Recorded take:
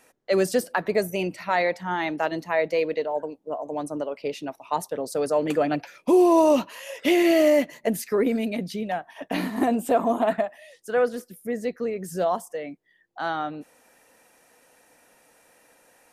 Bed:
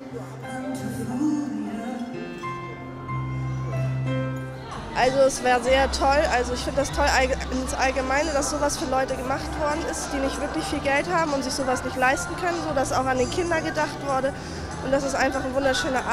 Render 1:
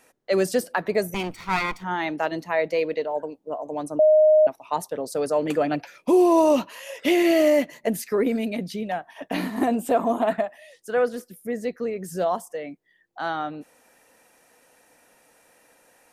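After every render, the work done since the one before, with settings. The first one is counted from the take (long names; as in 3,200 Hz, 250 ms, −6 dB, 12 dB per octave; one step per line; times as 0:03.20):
0:01.14–0:01.84: lower of the sound and its delayed copy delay 0.88 ms
0:03.99–0:04.47: beep over 618 Hz −12 dBFS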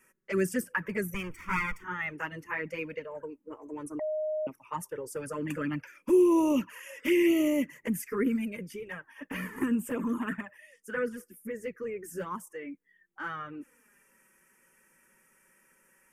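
flanger swept by the level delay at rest 5.4 ms, full sweep at −15 dBFS
phaser with its sweep stopped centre 1,700 Hz, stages 4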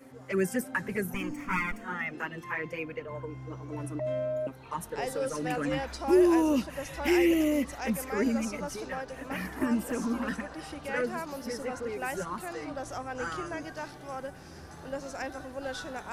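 mix in bed −14.5 dB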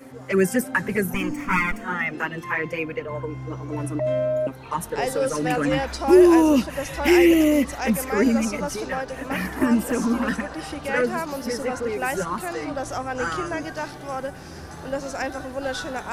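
level +8.5 dB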